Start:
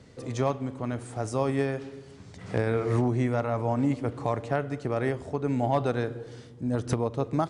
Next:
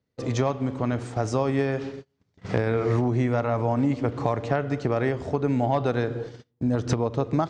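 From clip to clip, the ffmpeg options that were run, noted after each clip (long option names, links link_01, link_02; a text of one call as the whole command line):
ffmpeg -i in.wav -af "lowpass=frequency=6700:width=0.5412,lowpass=frequency=6700:width=1.3066,agate=range=-34dB:threshold=-41dB:ratio=16:detection=peak,acompressor=threshold=-28dB:ratio=3,volume=7.5dB" out.wav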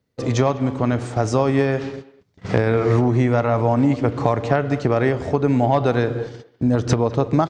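ffmpeg -i in.wav -filter_complex "[0:a]asplit=2[link_01][link_02];[link_02]adelay=200,highpass=300,lowpass=3400,asoftclip=type=hard:threshold=-18dB,volume=-17dB[link_03];[link_01][link_03]amix=inputs=2:normalize=0,volume=6dB" out.wav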